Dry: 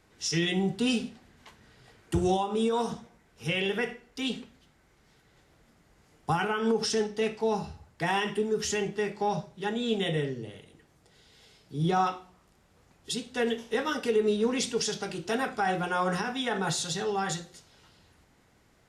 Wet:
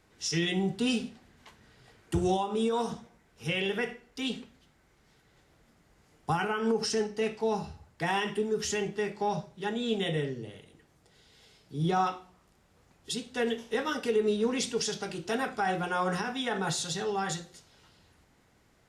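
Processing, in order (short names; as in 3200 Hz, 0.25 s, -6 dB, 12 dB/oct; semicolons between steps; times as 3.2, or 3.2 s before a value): 6.37–7.27 notch 3500 Hz, Q 5.8; gain -1.5 dB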